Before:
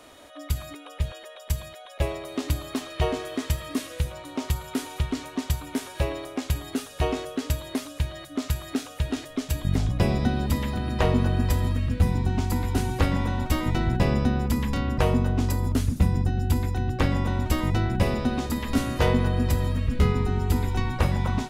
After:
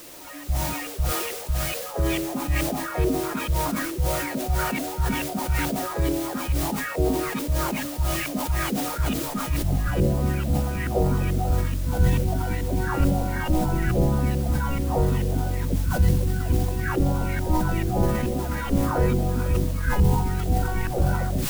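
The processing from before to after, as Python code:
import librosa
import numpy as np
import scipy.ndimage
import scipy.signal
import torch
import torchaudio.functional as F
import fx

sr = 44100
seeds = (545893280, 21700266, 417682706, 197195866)

p1 = fx.spec_delay(x, sr, highs='early', ms=644)
p2 = fx.filter_lfo_lowpass(p1, sr, shape='saw_up', hz=2.3, low_hz=540.0, high_hz=3700.0, q=1.9)
p3 = fx.formant_shift(p2, sr, semitones=-5)
p4 = fx.quant_dither(p3, sr, seeds[0], bits=6, dither='triangular')
p5 = p3 + F.gain(torch.from_numpy(p4), -6.5).numpy()
p6 = fx.sustainer(p5, sr, db_per_s=37.0)
y = F.gain(torch.from_numpy(p6), -1.5).numpy()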